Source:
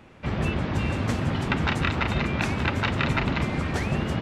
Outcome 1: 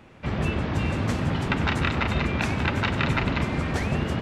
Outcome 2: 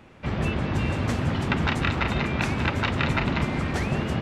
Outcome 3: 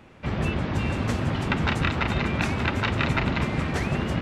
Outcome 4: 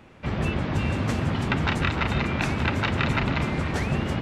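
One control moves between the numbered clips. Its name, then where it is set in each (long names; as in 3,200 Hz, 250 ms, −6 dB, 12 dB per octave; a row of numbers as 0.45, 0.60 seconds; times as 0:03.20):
feedback echo with a low-pass in the loop, delay time: 97, 201, 584, 302 milliseconds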